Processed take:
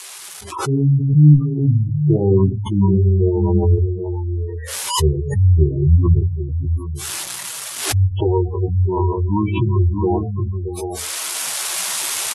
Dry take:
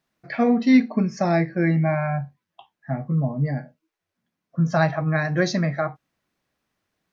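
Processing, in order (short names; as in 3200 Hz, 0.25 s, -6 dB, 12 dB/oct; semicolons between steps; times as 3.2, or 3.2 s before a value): switching spikes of -19.5 dBFS; high shelf 2100 Hz -5 dB; de-hum 178.6 Hz, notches 37; on a send: tapped delay 53/87/91/357/363/450 ms -18/-14.5/-18/-13.5/-14/-9 dB; on the sum: AGC gain up to 12 dB; added harmonics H 2 -10 dB, 3 -28 dB, 7 -35 dB, 8 -26 dB, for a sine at -0.5 dBFS; spectral gate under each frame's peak -15 dB strong; speed mistake 78 rpm record played at 45 rpm; backwards sustainer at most 73 dB/s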